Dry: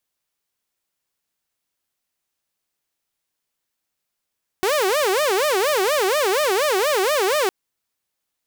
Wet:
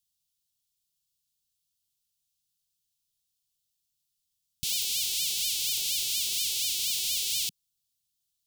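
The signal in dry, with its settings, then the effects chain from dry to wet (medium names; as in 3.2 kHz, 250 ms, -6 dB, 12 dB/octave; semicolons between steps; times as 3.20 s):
siren wail 370–615 Hz 4.2 per s saw -14.5 dBFS 2.86 s
inverse Chebyshev band-stop 310–1800 Hz, stop band 40 dB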